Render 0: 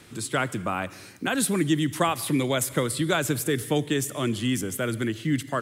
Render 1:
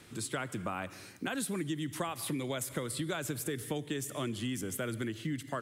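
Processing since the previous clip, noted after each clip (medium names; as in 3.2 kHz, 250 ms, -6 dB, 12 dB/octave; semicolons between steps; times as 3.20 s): compression, threshold -27 dBFS, peak gain reduction 9.5 dB; trim -5 dB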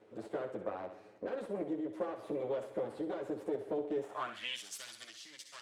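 comb filter that takes the minimum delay 9.5 ms; thinning echo 64 ms, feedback 51%, high-pass 210 Hz, level -9.5 dB; band-pass sweep 500 Hz -> 5.2 kHz, 3.98–4.71 s; trim +6 dB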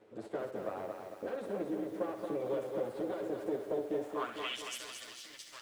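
bit-crushed delay 225 ms, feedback 55%, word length 10-bit, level -5 dB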